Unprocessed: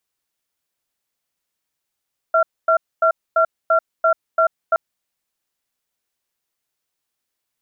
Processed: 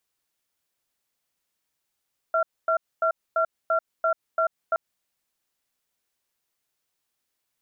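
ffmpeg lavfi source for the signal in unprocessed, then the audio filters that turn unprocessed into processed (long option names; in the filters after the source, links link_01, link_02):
-f lavfi -i "aevalsrc='0.188*(sin(2*PI*652*t)+sin(2*PI*1370*t))*clip(min(mod(t,0.34),0.09-mod(t,0.34))/0.005,0,1)':duration=2.42:sample_rate=44100"
-af "alimiter=limit=-16dB:level=0:latency=1:release=111"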